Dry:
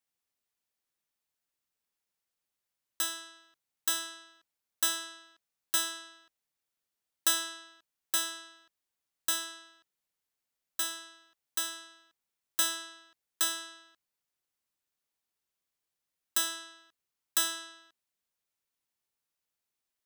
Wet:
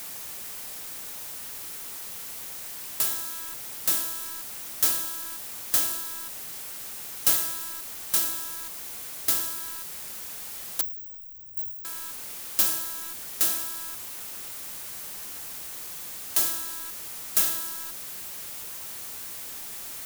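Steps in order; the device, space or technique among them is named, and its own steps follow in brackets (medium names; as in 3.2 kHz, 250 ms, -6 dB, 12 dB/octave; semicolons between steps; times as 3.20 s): early CD player with a faulty converter (jump at every zero crossing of -35.5 dBFS; sampling jitter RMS 0.069 ms); treble shelf 5.5 kHz +9 dB; 10.81–11.85 s: inverse Chebyshev band-stop 730–9100 Hz, stop band 80 dB; dynamic bell 1.9 kHz, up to -5 dB, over -45 dBFS, Q 0.86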